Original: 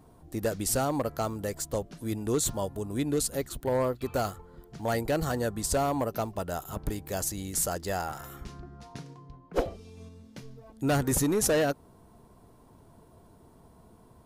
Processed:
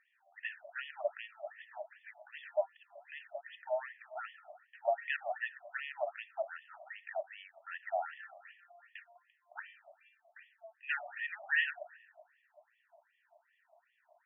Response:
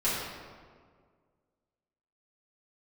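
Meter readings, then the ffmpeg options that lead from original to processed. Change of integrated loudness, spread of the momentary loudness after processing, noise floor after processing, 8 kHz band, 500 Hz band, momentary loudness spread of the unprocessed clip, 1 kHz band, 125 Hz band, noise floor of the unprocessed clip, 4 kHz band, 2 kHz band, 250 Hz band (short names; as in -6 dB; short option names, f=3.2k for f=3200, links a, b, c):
-10.0 dB, 20 LU, -77 dBFS, under -40 dB, -10.5 dB, 20 LU, -8.5 dB, under -40 dB, -57 dBFS, -10.0 dB, +2.5 dB, under -40 dB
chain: -filter_complex "[0:a]asplit=3[a][b][c];[a]bandpass=f=530:t=q:w=8,volume=0dB[d];[b]bandpass=f=1.84k:t=q:w=8,volume=-6dB[e];[c]bandpass=f=2.48k:t=q:w=8,volume=-9dB[f];[d][e][f]amix=inputs=3:normalize=0,asplit=2[g][h];[1:a]atrim=start_sample=2205,adelay=25[i];[h][i]afir=irnorm=-1:irlink=0,volume=-24.5dB[j];[g][j]amix=inputs=2:normalize=0,afftfilt=real='re*between(b*sr/1024,830*pow(2500/830,0.5+0.5*sin(2*PI*2.6*pts/sr))/1.41,830*pow(2500/830,0.5+0.5*sin(2*PI*2.6*pts/sr))*1.41)':imag='im*between(b*sr/1024,830*pow(2500/830,0.5+0.5*sin(2*PI*2.6*pts/sr))/1.41,830*pow(2500/830,0.5+0.5*sin(2*PI*2.6*pts/sr))*1.41)':win_size=1024:overlap=0.75,volume=16dB"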